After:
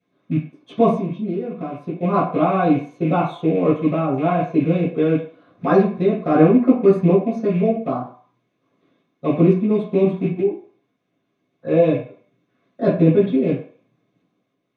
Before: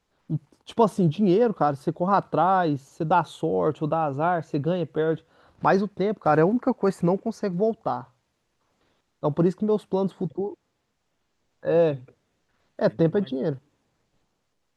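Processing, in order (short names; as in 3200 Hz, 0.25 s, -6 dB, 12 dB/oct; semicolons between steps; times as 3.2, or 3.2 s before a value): rattling part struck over -30 dBFS, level -30 dBFS; 0.91–2.03 compressor 4:1, threshold -31 dBFS, peak gain reduction 13 dB; reverb RT60 0.50 s, pre-delay 3 ms, DRR -11 dB; gain -15 dB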